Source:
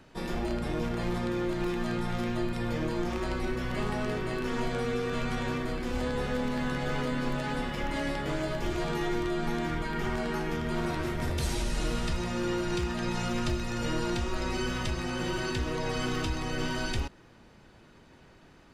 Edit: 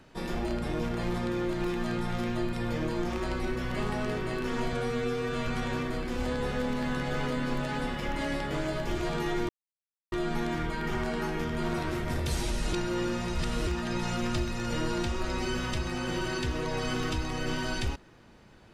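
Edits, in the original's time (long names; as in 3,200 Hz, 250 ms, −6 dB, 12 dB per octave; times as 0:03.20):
0:04.73–0:05.23: time-stretch 1.5×
0:09.24: splice in silence 0.63 s
0:11.85–0:12.79: reverse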